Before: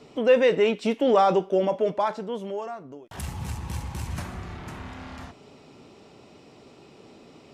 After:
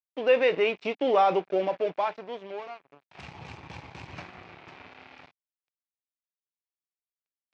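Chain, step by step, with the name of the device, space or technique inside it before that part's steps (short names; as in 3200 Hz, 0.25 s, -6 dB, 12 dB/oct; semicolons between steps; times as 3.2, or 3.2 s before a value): blown loudspeaker (crossover distortion -39 dBFS; speaker cabinet 150–4900 Hz, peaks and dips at 220 Hz -8 dB, 740 Hz +3 dB, 2400 Hz +8 dB); gain -3 dB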